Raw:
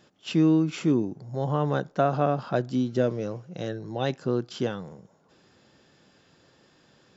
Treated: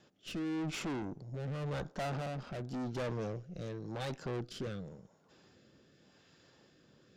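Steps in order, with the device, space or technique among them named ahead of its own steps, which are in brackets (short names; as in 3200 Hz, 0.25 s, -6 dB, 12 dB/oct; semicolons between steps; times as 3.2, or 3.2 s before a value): overdriven rotary cabinet (tube stage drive 35 dB, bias 0.65; rotary speaker horn 0.9 Hz); gain +1 dB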